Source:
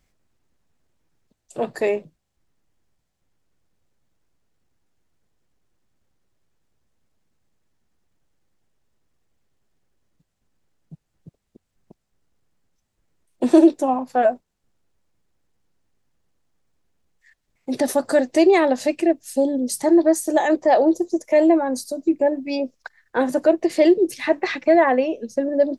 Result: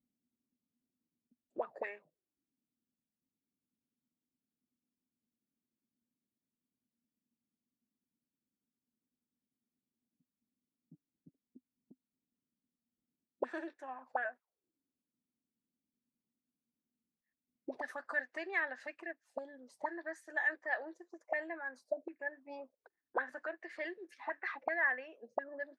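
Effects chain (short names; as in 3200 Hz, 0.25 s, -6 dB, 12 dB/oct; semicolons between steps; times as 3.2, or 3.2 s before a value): auto-wah 240–1700 Hz, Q 7.3, up, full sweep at -17.5 dBFS; gain -2 dB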